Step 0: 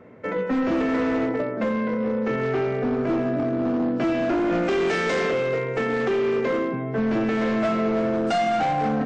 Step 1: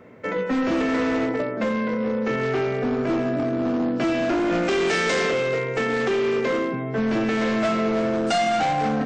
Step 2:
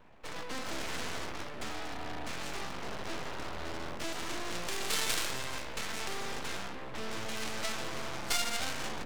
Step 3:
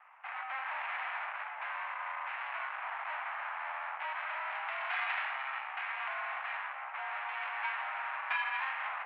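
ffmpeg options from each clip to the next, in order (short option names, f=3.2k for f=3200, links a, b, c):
-af "highshelf=f=3k:g=9.5"
-af "aeval=exprs='0.211*(cos(1*acos(clip(val(0)/0.211,-1,1)))-cos(1*PI/2))+0.0944*(cos(3*acos(clip(val(0)/0.211,-1,1)))-cos(3*PI/2))+0.00596*(cos(4*acos(clip(val(0)/0.211,-1,1)))-cos(4*PI/2))+0.0106*(cos(6*acos(clip(val(0)/0.211,-1,1)))-cos(6*PI/2))':c=same,aeval=exprs='abs(val(0))':c=same"
-af "highpass=f=490:t=q:w=0.5412,highpass=f=490:t=q:w=1.307,lowpass=f=2.2k:t=q:w=0.5176,lowpass=f=2.2k:t=q:w=0.7071,lowpass=f=2.2k:t=q:w=1.932,afreqshift=280,volume=4.5dB"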